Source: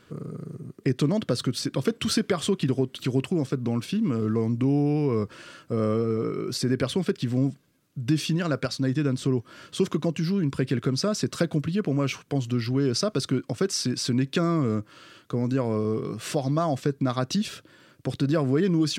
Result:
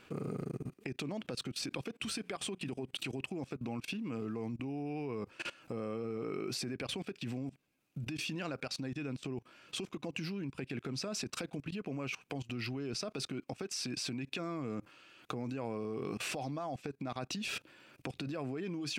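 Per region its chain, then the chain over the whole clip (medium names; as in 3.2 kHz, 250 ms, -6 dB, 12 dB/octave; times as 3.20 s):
1.98–3.10 s: peaking EQ 8.8 kHz +6.5 dB 0.25 oct + hum notches 60/120/180 Hz
whole clip: compression 6:1, threshold -32 dBFS; graphic EQ with 31 bands 100 Hz -9 dB, 160 Hz -6 dB, 800 Hz +9 dB, 2.5 kHz +12 dB; level held to a coarse grid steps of 21 dB; trim +3.5 dB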